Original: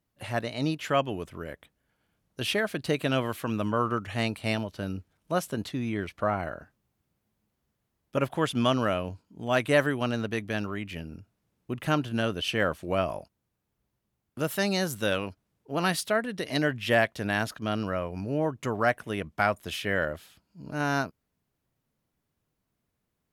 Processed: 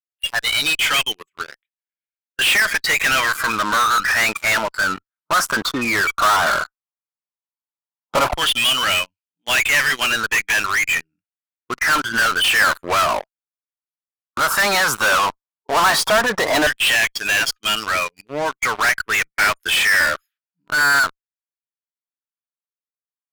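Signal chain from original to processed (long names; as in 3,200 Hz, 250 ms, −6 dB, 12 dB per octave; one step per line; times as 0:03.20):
auto-filter high-pass saw down 0.12 Hz 890–2,900 Hz
RIAA equalisation playback
noise reduction from a noise print of the clip's start 27 dB
in parallel at −6 dB: fuzz pedal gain 49 dB, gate −58 dBFS
on the sum: level +2.5 dB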